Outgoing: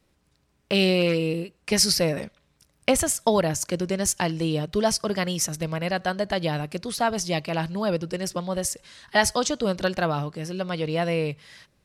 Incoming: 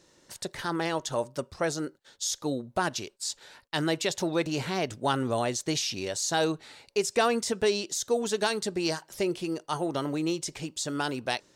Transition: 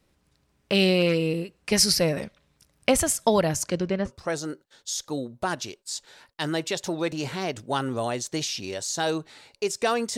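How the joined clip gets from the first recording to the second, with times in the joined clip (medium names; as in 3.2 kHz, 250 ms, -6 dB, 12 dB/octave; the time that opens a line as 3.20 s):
outgoing
3.62–4.12 s: low-pass 10 kHz -> 1.5 kHz
4.08 s: go over to incoming from 1.42 s, crossfade 0.08 s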